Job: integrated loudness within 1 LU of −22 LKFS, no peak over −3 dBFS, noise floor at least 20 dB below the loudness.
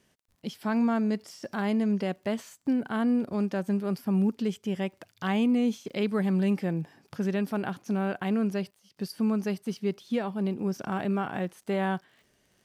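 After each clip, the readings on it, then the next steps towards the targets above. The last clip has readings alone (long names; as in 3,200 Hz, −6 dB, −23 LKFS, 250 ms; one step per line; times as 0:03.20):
crackle rate 40 per second; integrated loudness −29.0 LKFS; sample peak −17.0 dBFS; target loudness −22.0 LKFS
→ click removal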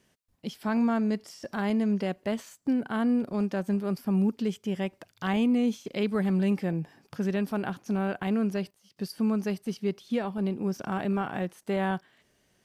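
crackle rate 0.079 per second; integrated loudness −29.5 LKFS; sample peak −17.0 dBFS; target loudness −22.0 LKFS
→ level +7.5 dB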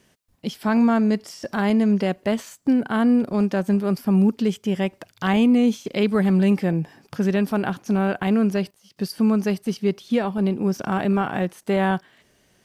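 integrated loudness −22.0 LKFS; sample peak −9.5 dBFS; background noise floor −62 dBFS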